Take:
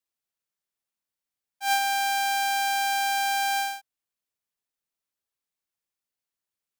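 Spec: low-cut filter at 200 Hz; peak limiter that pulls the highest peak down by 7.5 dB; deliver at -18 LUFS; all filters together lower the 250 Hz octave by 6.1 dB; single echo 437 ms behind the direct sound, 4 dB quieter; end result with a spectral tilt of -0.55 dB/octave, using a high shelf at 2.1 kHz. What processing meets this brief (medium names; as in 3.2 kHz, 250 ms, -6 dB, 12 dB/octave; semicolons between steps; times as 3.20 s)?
high-pass 200 Hz; peaking EQ 250 Hz -5 dB; treble shelf 2.1 kHz -6.5 dB; peak limiter -25.5 dBFS; delay 437 ms -4 dB; trim +10 dB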